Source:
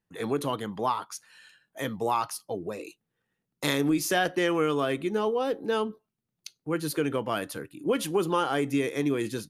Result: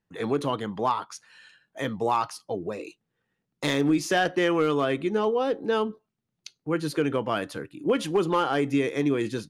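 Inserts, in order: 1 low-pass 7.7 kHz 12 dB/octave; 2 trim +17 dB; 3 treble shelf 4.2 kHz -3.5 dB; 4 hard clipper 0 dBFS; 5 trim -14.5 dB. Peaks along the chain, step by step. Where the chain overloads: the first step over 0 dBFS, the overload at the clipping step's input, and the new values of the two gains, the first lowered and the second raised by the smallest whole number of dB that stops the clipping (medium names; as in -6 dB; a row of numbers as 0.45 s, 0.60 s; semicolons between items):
-10.5 dBFS, +6.5 dBFS, +6.0 dBFS, 0.0 dBFS, -14.5 dBFS; step 2, 6.0 dB; step 2 +11 dB, step 5 -8.5 dB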